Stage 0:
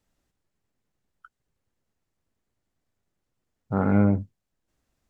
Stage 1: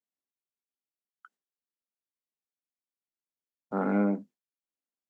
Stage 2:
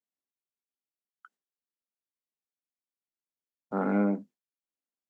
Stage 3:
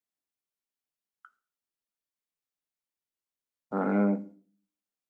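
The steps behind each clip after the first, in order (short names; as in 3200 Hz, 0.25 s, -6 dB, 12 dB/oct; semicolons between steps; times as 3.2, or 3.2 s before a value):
steep high-pass 200 Hz 36 dB/oct; gate with hold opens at -46 dBFS; gain -3 dB
nothing audible
reverb RT60 0.45 s, pre-delay 7 ms, DRR 11.5 dB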